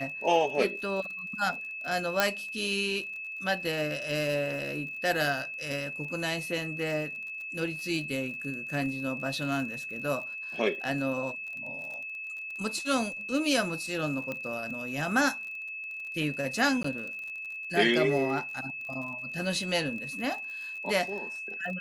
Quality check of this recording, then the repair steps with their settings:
crackle 36 per s -38 dBFS
whine 2.6 kHz -36 dBFS
2.20 s: pop -8 dBFS
14.32 s: pop -21 dBFS
16.83–16.84 s: dropout 14 ms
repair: de-click; band-stop 2.6 kHz, Q 30; interpolate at 16.83 s, 14 ms

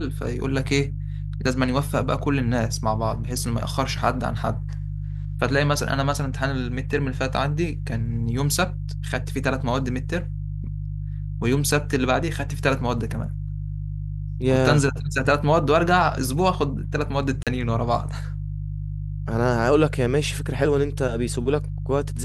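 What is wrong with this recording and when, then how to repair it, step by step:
hum 50 Hz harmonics 3 -29 dBFS
17.43–17.47 s: dropout 37 ms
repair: de-hum 50 Hz, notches 3; interpolate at 17.43 s, 37 ms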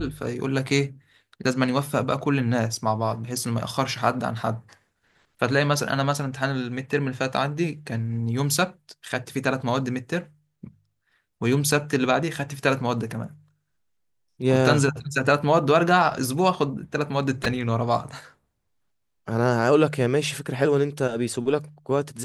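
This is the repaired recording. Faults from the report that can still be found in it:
nothing left

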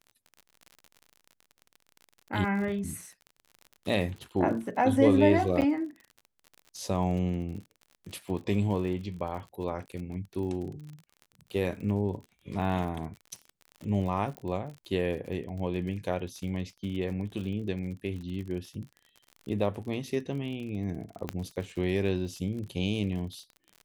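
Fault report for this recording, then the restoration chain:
crackle 47 per s -38 dBFS
5.61–5.62 s: dropout 8.7 ms
14.37 s: pop -23 dBFS
21.29 s: pop -17 dBFS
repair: de-click; interpolate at 5.61 s, 8.7 ms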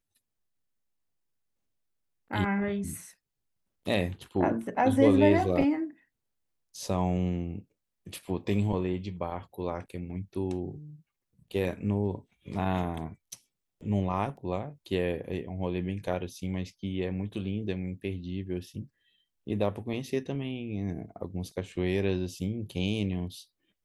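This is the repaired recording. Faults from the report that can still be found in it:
14.37 s: pop

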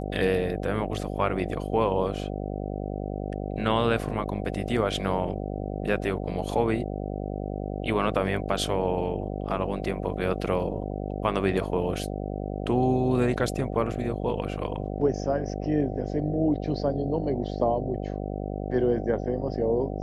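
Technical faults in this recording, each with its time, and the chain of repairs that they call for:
buzz 50 Hz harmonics 15 -32 dBFS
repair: de-hum 50 Hz, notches 15

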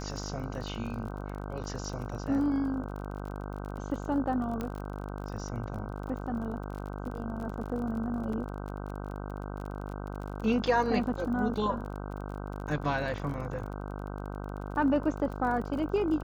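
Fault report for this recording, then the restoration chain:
buzz 50 Hz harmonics 31 -38 dBFS
crackle 30 per s -38 dBFS
4.61 s: pop -21 dBFS
8.33 s: dropout 3.1 ms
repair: de-click; de-hum 50 Hz, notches 31; interpolate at 8.33 s, 3.1 ms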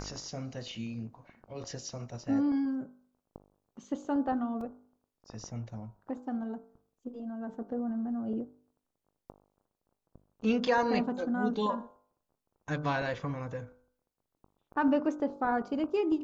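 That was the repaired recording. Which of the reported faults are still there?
4.61 s: pop

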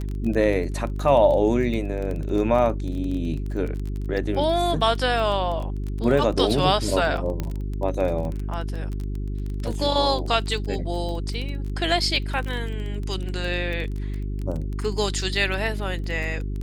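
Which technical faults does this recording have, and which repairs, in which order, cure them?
crackle 21 per s -28 dBFS
hum 50 Hz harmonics 8 -28 dBFS
7.40 s: pop -14 dBFS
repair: de-click; de-hum 50 Hz, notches 8

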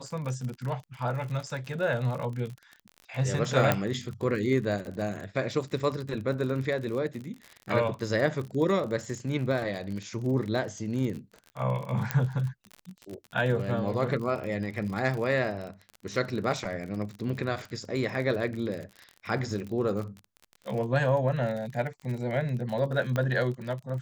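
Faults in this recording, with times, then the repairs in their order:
crackle 45 per s -34 dBFS
3.72 s: pop -9 dBFS
12.11 s: pop -11 dBFS
23.16 s: pop -16 dBFS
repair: de-click

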